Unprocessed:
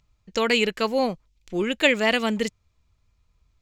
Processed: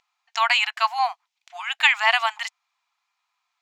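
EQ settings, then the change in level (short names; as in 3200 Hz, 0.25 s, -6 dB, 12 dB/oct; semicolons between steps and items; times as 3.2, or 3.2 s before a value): dynamic EQ 1000 Hz, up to +5 dB, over -37 dBFS, Q 2.1; brick-wall FIR high-pass 680 Hz; high shelf 6000 Hz -11 dB; +5.0 dB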